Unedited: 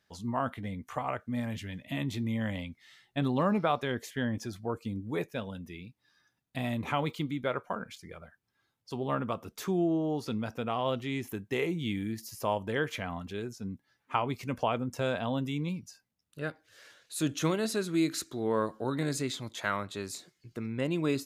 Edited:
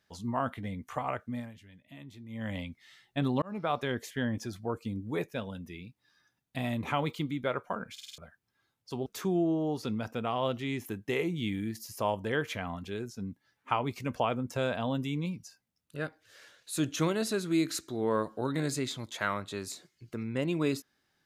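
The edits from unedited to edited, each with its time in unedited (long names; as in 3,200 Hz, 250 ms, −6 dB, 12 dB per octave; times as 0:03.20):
0:01.24–0:02.57: duck −15 dB, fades 0.29 s
0:03.42–0:03.80: fade in
0:07.93: stutter in place 0.05 s, 5 plays
0:09.06–0:09.49: remove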